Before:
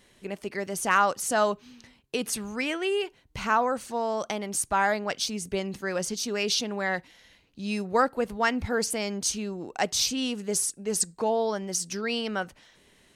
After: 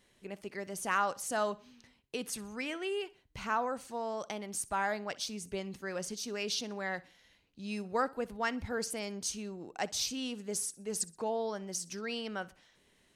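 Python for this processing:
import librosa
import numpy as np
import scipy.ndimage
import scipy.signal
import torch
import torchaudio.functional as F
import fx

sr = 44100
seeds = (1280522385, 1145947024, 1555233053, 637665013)

y = fx.echo_feedback(x, sr, ms=62, feedback_pct=39, wet_db=-21)
y = y * 10.0 ** (-8.5 / 20.0)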